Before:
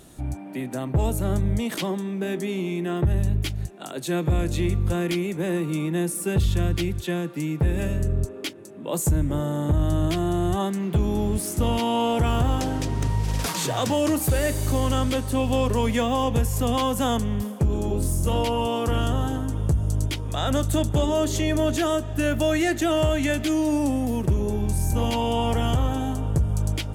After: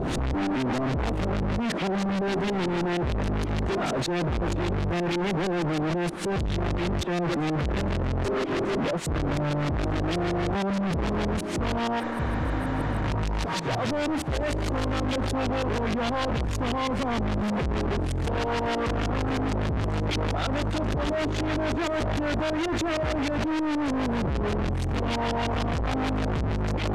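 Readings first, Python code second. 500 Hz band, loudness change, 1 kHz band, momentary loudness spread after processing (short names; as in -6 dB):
-2.0 dB, -3.0 dB, -0.5 dB, 2 LU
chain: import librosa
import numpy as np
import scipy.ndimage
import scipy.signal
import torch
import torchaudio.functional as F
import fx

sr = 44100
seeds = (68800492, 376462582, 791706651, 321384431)

y = np.sign(x) * np.sqrt(np.mean(np.square(x)))
y = fx.filter_lfo_lowpass(y, sr, shape='saw_up', hz=6.4, low_hz=520.0, high_hz=6200.0, q=0.89)
y = fx.spec_repair(y, sr, seeds[0], start_s=12.02, length_s=0.97, low_hz=290.0, high_hz=8000.0, source='after')
y = F.gain(torch.from_numpy(y), -2.5).numpy()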